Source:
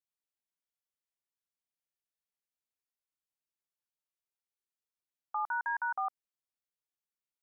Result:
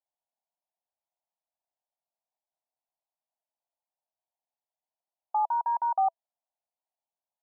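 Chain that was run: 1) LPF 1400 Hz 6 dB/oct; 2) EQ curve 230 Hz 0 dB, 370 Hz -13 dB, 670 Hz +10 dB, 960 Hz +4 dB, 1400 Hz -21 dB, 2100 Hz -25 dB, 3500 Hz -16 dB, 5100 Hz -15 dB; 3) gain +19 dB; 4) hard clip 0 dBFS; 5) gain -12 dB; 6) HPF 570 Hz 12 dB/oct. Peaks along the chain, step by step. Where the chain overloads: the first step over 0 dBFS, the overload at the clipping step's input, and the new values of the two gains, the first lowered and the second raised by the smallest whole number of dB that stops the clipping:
-28.0, -24.5, -5.5, -5.5, -17.5, -18.5 dBFS; no overload

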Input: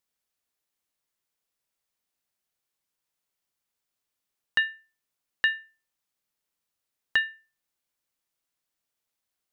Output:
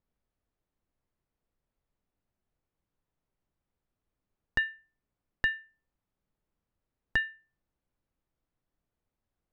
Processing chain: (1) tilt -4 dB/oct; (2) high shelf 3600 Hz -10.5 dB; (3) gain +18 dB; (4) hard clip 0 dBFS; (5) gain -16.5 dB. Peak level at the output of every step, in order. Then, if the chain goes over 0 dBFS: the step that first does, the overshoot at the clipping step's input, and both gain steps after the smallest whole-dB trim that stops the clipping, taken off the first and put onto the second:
-13.0, -14.5, +3.5, 0.0, -16.5 dBFS; step 3, 3.5 dB; step 3 +14 dB, step 5 -12.5 dB

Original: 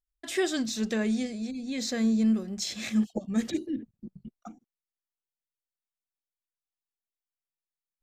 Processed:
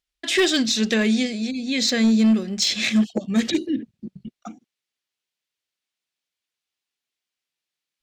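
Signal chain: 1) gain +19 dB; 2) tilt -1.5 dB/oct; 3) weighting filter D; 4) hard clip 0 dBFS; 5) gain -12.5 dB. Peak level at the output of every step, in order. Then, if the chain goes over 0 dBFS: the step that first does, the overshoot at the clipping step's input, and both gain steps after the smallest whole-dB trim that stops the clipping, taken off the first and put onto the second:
+2.5, +5.5, +6.0, 0.0, -12.5 dBFS; step 1, 6.0 dB; step 1 +13 dB, step 5 -6.5 dB

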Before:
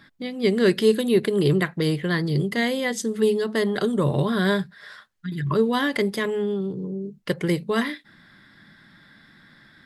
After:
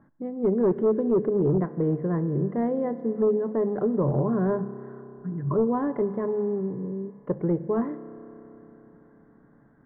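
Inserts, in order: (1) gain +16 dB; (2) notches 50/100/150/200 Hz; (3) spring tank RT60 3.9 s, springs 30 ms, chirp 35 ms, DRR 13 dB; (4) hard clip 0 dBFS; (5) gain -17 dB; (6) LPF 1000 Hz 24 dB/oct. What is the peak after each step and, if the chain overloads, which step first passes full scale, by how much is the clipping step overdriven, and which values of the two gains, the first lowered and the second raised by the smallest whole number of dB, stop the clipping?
+9.0, +8.5, +9.0, 0.0, -17.0, -15.5 dBFS; step 1, 9.0 dB; step 1 +7 dB, step 5 -8 dB

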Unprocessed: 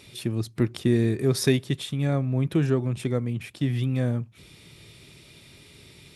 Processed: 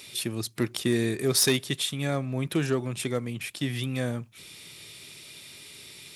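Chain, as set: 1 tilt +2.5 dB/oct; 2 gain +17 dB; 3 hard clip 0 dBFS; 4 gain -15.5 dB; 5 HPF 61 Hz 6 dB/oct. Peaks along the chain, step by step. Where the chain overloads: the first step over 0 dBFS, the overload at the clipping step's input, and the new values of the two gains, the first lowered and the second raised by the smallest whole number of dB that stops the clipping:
-9.5, +7.5, 0.0, -15.5, -14.0 dBFS; step 2, 7.5 dB; step 2 +9 dB, step 4 -7.5 dB

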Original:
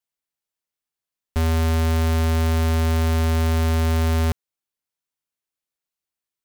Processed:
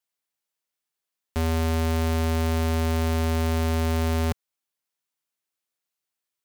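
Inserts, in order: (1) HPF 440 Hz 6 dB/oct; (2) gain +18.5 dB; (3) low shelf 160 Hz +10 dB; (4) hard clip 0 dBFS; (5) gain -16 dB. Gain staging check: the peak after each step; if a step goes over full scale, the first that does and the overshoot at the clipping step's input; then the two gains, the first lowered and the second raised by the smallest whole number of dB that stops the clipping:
-13.0, +5.5, +5.5, 0.0, -16.0 dBFS; step 2, 5.5 dB; step 2 +12.5 dB, step 5 -10 dB

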